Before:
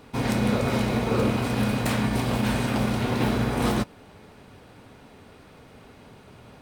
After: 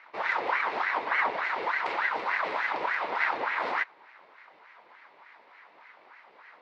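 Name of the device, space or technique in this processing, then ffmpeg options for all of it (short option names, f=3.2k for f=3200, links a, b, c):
voice changer toy: -af "aeval=exprs='val(0)*sin(2*PI*1000*n/s+1000*0.8/3.4*sin(2*PI*3.4*n/s))':c=same,highpass=490,equalizer=f=950:t=q:w=4:g=7,equalizer=f=2.1k:t=q:w=4:g=7,equalizer=f=3.2k:t=q:w=4:g=-4,lowpass=f=4.2k:w=0.5412,lowpass=f=4.2k:w=1.3066,volume=-4dB"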